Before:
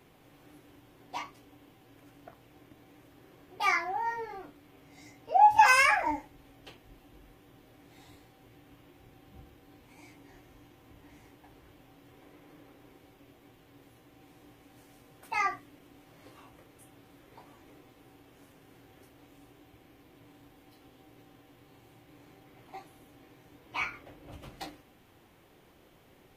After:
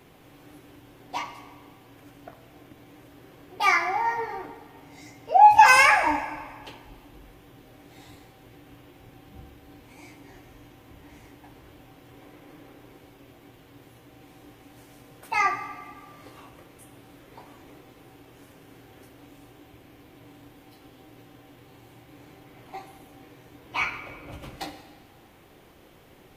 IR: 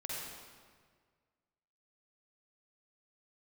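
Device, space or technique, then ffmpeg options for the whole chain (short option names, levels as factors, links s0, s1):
saturated reverb return: -filter_complex "[0:a]asplit=2[s0][s1];[1:a]atrim=start_sample=2205[s2];[s1][s2]afir=irnorm=-1:irlink=0,asoftclip=type=tanh:threshold=0.188,volume=0.376[s3];[s0][s3]amix=inputs=2:normalize=0,volume=1.68"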